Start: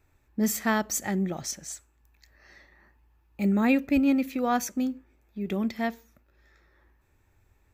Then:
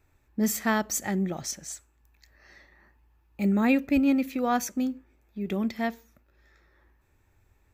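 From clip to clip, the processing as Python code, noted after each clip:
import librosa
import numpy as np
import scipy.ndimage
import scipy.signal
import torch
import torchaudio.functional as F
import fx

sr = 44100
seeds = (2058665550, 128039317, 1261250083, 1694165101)

y = x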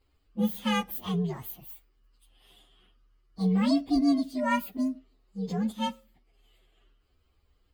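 y = fx.partial_stretch(x, sr, pct=127)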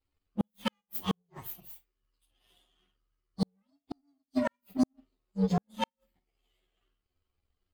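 y = fx.room_early_taps(x, sr, ms=(11, 52), db=(-4.5, -11.0))
y = fx.gate_flip(y, sr, shuts_db=-19.0, range_db=-40)
y = fx.power_curve(y, sr, exponent=1.4)
y = y * 10.0 ** (4.0 / 20.0)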